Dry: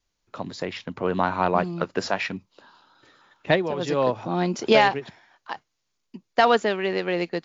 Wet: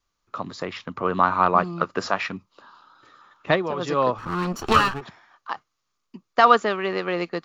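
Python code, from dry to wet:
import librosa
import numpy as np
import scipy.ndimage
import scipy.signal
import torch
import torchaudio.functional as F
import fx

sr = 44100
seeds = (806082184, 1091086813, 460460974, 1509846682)

y = fx.lower_of_two(x, sr, delay_ms=0.7, at=(4.18, 5.01))
y = fx.peak_eq(y, sr, hz=1200.0, db=13.0, octaves=0.38)
y = F.gain(torch.from_numpy(y), -1.0).numpy()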